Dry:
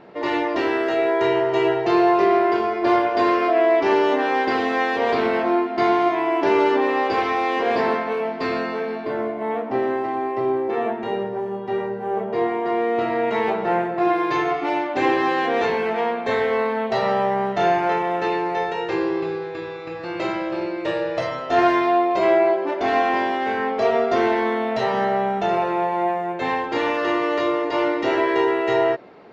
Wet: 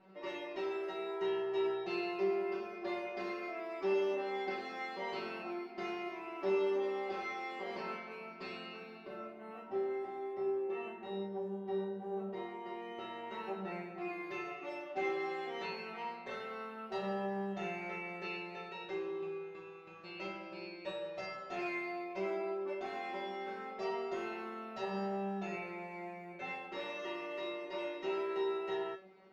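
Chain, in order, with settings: feedback comb 190 Hz, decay 0.3 s, harmonics all, mix 100%; trim -3 dB

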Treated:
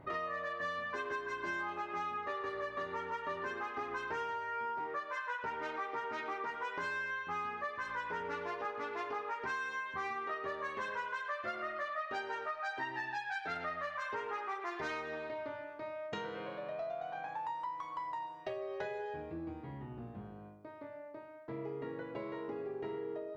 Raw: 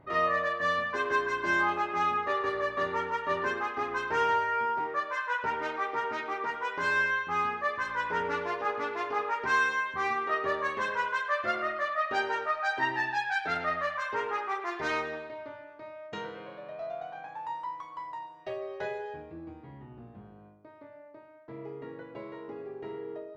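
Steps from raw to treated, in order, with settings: compression, threshold -39 dBFS, peak gain reduction 16 dB; trim +2 dB

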